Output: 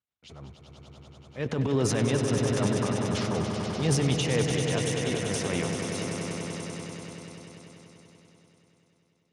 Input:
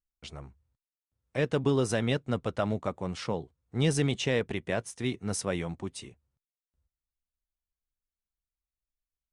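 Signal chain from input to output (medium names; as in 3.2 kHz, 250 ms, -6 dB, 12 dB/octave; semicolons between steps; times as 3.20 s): transient shaper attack -10 dB, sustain +10 dB; echo with a slow build-up 97 ms, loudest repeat 5, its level -8 dB; Speex 36 kbps 32 kHz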